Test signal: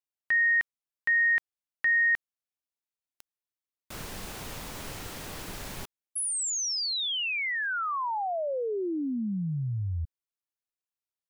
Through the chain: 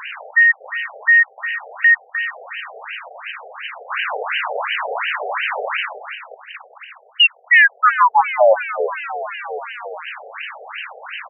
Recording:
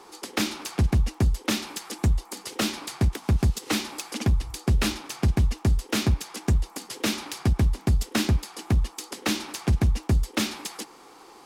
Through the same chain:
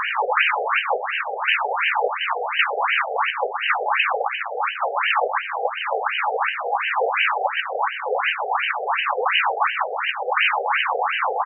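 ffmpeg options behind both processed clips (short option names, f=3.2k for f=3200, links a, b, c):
-filter_complex "[0:a]aeval=exprs='val(0)+0.5*0.0398*sgn(val(0))':c=same,highshelf=f=4.9k:t=q:w=3:g=-12,acrossover=split=3600[a][b];[b]acompressor=threshold=-38dB:ratio=4:attack=1:release=60[c];[a][c]amix=inputs=2:normalize=0,aeval=exprs='0.355*sin(PI/2*3.55*val(0)/0.355)':c=same,asplit=2[d][e];[e]aecho=0:1:126|252|378|504|630|756|882:0.376|0.218|0.126|0.0733|0.0425|0.0247|0.0143[f];[d][f]amix=inputs=2:normalize=0,afftfilt=real='re*between(b*sr/1024,550*pow(2200/550,0.5+0.5*sin(2*PI*2.8*pts/sr))/1.41,550*pow(2200/550,0.5+0.5*sin(2*PI*2.8*pts/sr))*1.41)':imag='im*between(b*sr/1024,550*pow(2200/550,0.5+0.5*sin(2*PI*2.8*pts/sr))/1.41,550*pow(2200/550,0.5+0.5*sin(2*PI*2.8*pts/sr))*1.41)':win_size=1024:overlap=0.75,volume=2dB"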